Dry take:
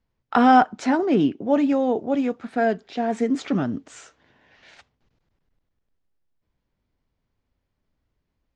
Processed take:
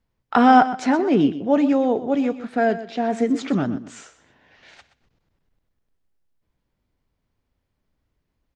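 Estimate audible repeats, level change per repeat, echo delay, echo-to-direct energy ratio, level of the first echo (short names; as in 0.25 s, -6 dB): 2, -13.0 dB, 0.124 s, -14.0 dB, -14.0 dB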